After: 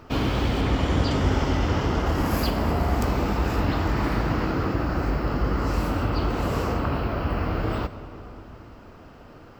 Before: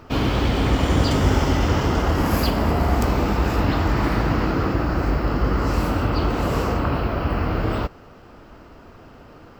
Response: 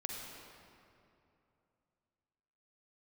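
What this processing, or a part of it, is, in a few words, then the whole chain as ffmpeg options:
compressed reverb return: -filter_complex "[0:a]asettb=1/sr,asplit=3[s0][s1][s2];[s0]atrim=end=0.614[s3];[s1]atrim=start=0.61:end=2.06,asetpts=PTS-STARTPTS,afade=t=in:d=0.004:c=qsin,afade=t=out:st=1.446:d=0.004:c=qsin,acrossover=split=6400[s4][s5];[s5]acompressor=threshold=0.00251:ratio=4:attack=1:release=60[s6];[s4][s6]amix=inputs=2:normalize=0[s7];[s2]atrim=start=2.056[s8];[s3][s7]acrossfade=d=0.004:c1=hsin:c2=qsin[s9];[s9][s8]acrossfade=d=0.004:c1=qsin:c2=hsin,asplit=2[s10][s11];[1:a]atrim=start_sample=2205[s12];[s11][s12]afir=irnorm=-1:irlink=0,acompressor=threshold=0.0708:ratio=6,volume=0.501[s13];[s10][s13]amix=inputs=2:normalize=0,volume=0.562"

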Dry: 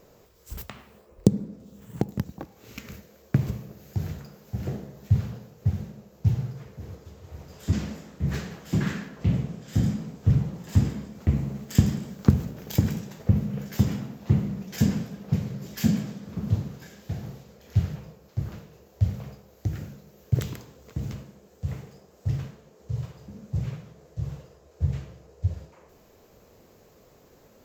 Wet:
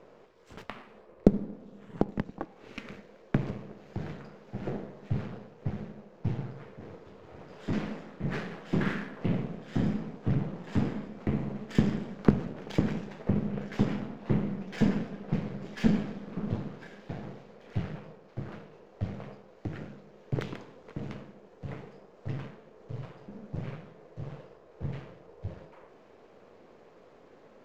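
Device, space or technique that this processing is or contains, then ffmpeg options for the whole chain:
crystal radio: -af "highpass=220,lowpass=2600,aeval=exprs='if(lt(val(0),0),0.447*val(0),val(0))':c=same,volume=1.68"

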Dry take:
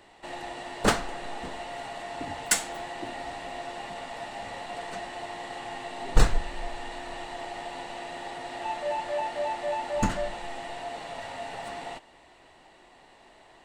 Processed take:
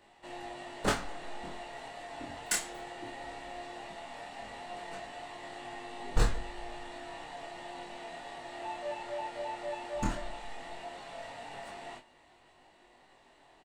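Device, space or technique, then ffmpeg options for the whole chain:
double-tracked vocal: -filter_complex "[0:a]asplit=2[s0][s1];[s1]adelay=28,volume=0.376[s2];[s0][s2]amix=inputs=2:normalize=0,flanger=delay=19.5:depth=6.4:speed=0.16,volume=0.631"

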